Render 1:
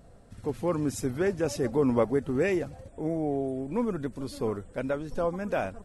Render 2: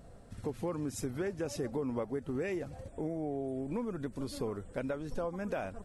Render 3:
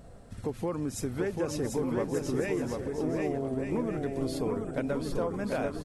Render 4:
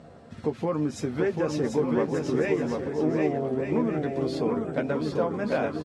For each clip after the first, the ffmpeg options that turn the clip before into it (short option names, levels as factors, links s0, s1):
-af "acompressor=threshold=0.0224:ratio=5"
-af "aecho=1:1:740|1184|1450|1610|1706:0.631|0.398|0.251|0.158|0.1,volume=1.5"
-filter_complex "[0:a]highpass=130,lowpass=4700,asplit=2[s0][s1];[s1]adelay=13,volume=0.447[s2];[s0][s2]amix=inputs=2:normalize=0,volume=1.68"